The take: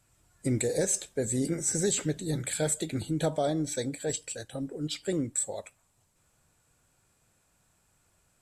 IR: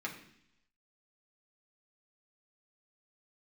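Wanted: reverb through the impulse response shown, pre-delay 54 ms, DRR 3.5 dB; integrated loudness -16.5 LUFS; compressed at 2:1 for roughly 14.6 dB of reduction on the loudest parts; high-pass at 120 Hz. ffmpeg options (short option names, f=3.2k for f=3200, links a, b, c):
-filter_complex "[0:a]highpass=120,acompressor=threshold=-52dB:ratio=2,asplit=2[a][b];[1:a]atrim=start_sample=2205,adelay=54[c];[b][c]afir=irnorm=-1:irlink=0,volume=-6dB[d];[a][d]amix=inputs=2:normalize=0,volume=26.5dB"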